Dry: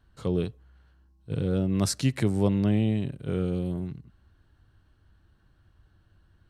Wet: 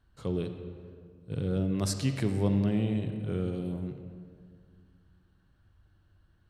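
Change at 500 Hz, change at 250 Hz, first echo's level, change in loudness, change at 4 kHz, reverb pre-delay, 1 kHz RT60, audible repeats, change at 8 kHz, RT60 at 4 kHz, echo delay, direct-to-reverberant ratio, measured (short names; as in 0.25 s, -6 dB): -3.5 dB, -3.5 dB, none, -3.5 dB, -4.0 dB, 38 ms, 2.0 s, none, -4.5 dB, 1.3 s, none, 7.0 dB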